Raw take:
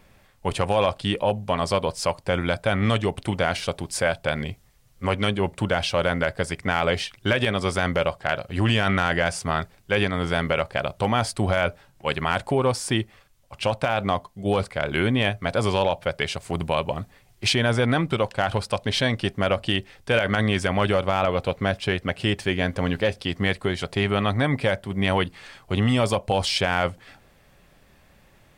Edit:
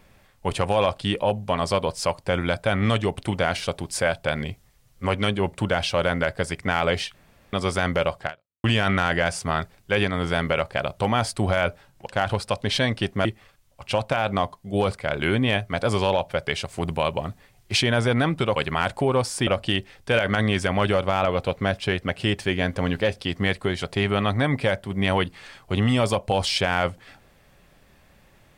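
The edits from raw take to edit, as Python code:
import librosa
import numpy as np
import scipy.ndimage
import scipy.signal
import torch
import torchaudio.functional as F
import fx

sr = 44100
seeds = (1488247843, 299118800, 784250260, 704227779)

y = fx.edit(x, sr, fx.room_tone_fill(start_s=7.14, length_s=0.39),
    fx.fade_out_span(start_s=8.26, length_s=0.38, curve='exp'),
    fx.swap(start_s=12.06, length_s=0.91, other_s=18.28, other_length_s=1.19), tone=tone)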